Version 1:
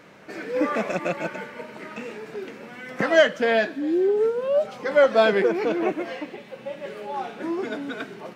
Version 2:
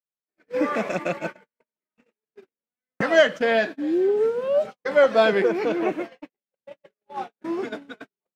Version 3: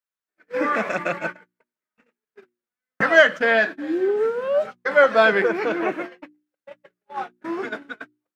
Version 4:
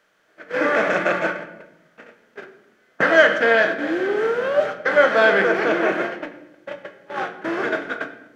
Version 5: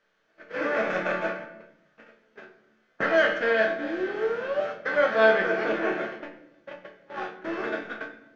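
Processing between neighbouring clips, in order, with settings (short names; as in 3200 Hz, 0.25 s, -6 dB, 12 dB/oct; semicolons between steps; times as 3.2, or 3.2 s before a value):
gate -29 dBFS, range -59 dB
bell 1500 Hz +9 dB 1.2 oct; notches 60/120/180/240/300/360 Hz; gain -1 dB
per-bin compression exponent 0.6; shoebox room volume 310 m³, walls mixed, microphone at 0.55 m; gain -3 dB
LPF 6300 Hz 24 dB/oct; low shelf 63 Hz +11 dB; resonator bank D2 major, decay 0.28 s; gain +3 dB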